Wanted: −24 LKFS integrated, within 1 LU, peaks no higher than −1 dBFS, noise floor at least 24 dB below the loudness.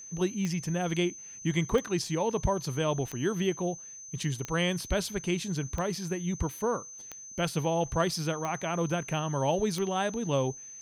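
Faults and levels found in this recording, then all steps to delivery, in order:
number of clicks 8; interfering tone 6,200 Hz; level of the tone −43 dBFS; integrated loudness −30.5 LKFS; sample peak −14.5 dBFS; target loudness −24.0 LKFS
→ click removal
notch filter 6,200 Hz, Q 30
level +6.5 dB

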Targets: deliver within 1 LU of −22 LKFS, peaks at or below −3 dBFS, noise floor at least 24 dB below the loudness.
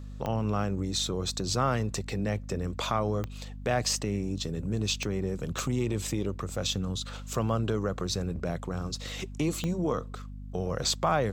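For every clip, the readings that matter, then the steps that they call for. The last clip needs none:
number of clicks 5; mains hum 50 Hz; hum harmonics up to 250 Hz; level of the hum −38 dBFS; integrated loudness −31.0 LKFS; sample peak −13.5 dBFS; target loudness −22.0 LKFS
→ click removal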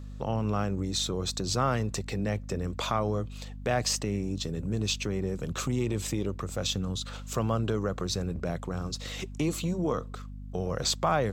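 number of clicks 0; mains hum 50 Hz; hum harmonics up to 250 Hz; level of the hum −38 dBFS
→ mains-hum notches 50/100/150/200/250 Hz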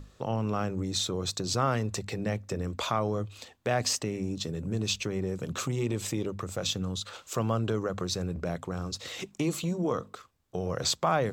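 mains hum none found; integrated loudness −31.5 LKFS; sample peak −14.0 dBFS; target loudness −22.0 LKFS
→ level +9.5 dB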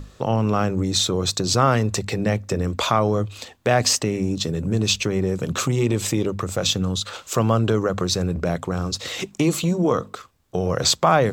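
integrated loudness −22.0 LKFS; sample peak −4.5 dBFS; background noise floor −51 dBFS

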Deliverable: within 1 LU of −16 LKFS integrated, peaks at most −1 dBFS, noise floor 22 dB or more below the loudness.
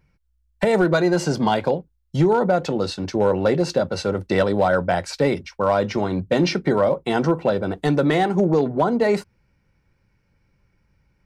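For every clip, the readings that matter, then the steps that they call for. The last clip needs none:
share of clipped samples 0.7%; peaks flattened at −10.0 dBFS; integrated loudness −21.0 LKFS; sample peak −10.0 dBFS; target loudness −16.0 LKFS
→ clipped peaks rebuilt −10 dBFS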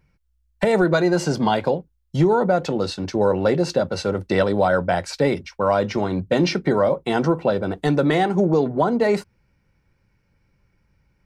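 share of clipped samples 0.0%; integrated loudness −20.5 LKFS; sample peak −7.5 dBFS; target loudness −16.0 LKFS
→ level +4.5 dB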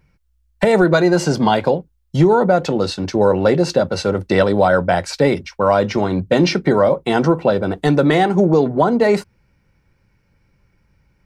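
integrated loudness −16.0 LKFS; sample peak −3.0 dBFS; background noise floor −62 dBFS

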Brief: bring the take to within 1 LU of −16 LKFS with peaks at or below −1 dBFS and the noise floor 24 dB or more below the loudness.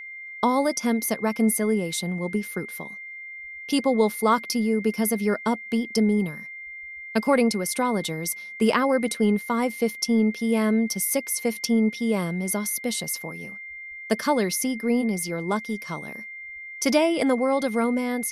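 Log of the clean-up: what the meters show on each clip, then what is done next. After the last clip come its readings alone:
interfering tone 2,100 Hz; level of the tone −36 dBFS; integrated loudness −24.0 LKFS; sample peak −6.5 dBFS; target loudness −16.0 LKFS
→ notch filter 2,100 Hz, Q 30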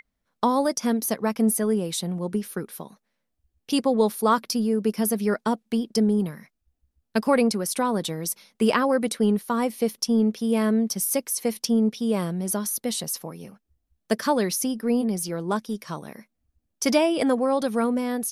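interfering tone none found; integrated loudness −24.5 LKFS; sample peak −7.0 dBFS; target loudness −16.0 LKFS
→ level +8.5 dB
brickwall limiter −1 dBFS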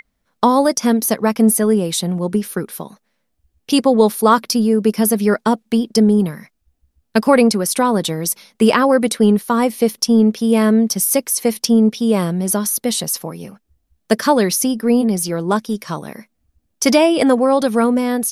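integrated loudness −16.0 LKFS; sample peak −1.0 dBFS; background noise floor −70 dBFS

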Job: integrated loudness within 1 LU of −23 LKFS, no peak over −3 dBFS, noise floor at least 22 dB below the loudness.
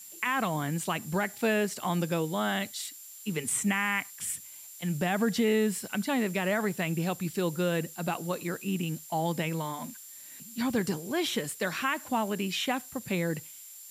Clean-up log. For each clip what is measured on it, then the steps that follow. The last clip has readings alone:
interfering tone 7,300 Hz; level of the tone −49 dBFS; background noise floor −48 dBFS; target noise floor −53 dBFS; integrated loudness −30.5 LKFS; sample peak −16.0 dBFS; target loudness −23.0 LKFS
→ notch filter 7,300 Hz, Q 30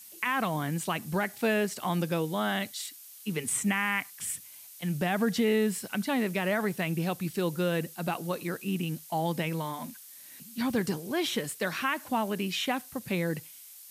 interfering tone none found; background noise floor −49 dBFS; target noise floor −53 dBFS
→ broadband denoise 6 dB, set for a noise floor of −49 dBFS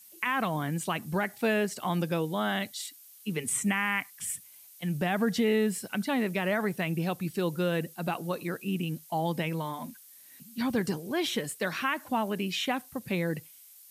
background noise floor −53 dBFS; integrated loudness −30.5 LKFS; sample peak −16.0 dBFS; target loudness −23.0 LKFS
→ level +7.5 dB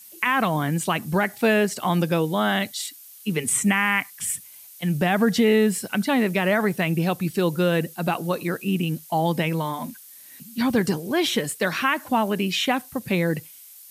integrated loudness −23.0 LKFS; sample peak −8.5 dBFS; background noise floor −46 dBFS

